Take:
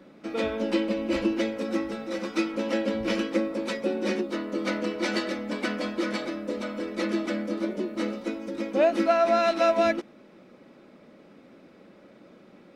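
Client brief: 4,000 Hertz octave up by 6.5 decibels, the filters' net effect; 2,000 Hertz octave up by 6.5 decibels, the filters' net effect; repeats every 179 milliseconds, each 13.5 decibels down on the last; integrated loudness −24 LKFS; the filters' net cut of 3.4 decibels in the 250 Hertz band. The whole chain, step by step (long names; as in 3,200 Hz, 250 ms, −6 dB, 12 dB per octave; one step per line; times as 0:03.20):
parametric band 250 Hz −5 dB
parametric band 2,000 Hz +6.5 dB
parametric band 4,000 Hz +6 dB
repeating echo 179 ms, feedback 21%, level −13.5 dB
level +2.5 dB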